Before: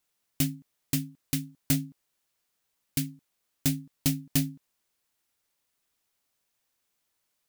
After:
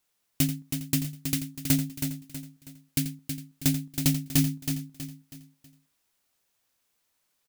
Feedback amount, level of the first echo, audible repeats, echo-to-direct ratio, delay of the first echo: no regular repeats, -12.5 dB, 7, -5.0 dB, 86 ms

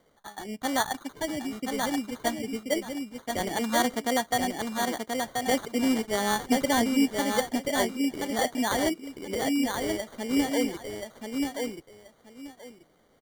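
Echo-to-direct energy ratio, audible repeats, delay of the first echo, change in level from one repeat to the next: -4.0 dB, 2, 1031 ms, -14.0 dB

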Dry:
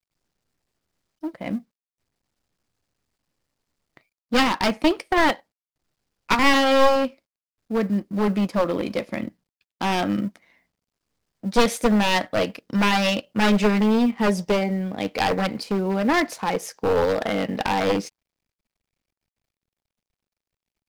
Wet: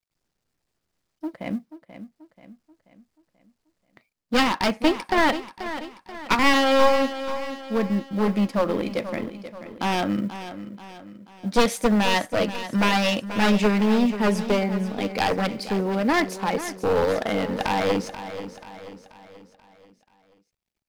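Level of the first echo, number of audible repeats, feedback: -12.0 dB, 4, 47%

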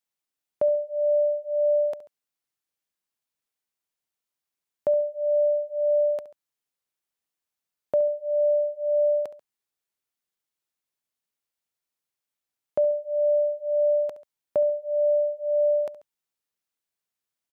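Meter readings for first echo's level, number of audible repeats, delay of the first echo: -16.0 dB, 2, 69 ms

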